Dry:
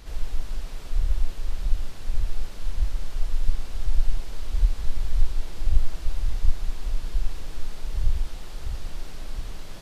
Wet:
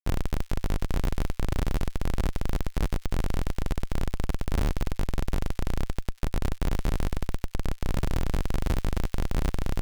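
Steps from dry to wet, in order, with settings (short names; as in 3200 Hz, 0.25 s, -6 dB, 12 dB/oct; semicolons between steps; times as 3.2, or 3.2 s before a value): 4.98–7.81 expander -18 dBFS; compressor 10:1, threshold -16 dBFS, peak gain reduction 9.5 dB; Schmitt trigger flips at -34 dBFS; thin delay 96 ms, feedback 68%, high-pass 2600 Hz, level -14.5 dB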